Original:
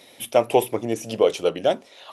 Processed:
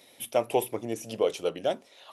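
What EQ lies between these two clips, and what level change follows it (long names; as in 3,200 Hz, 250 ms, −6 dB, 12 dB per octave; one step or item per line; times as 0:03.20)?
high-shelf EQ 10,000 Hz +7 dB
−7.5 dB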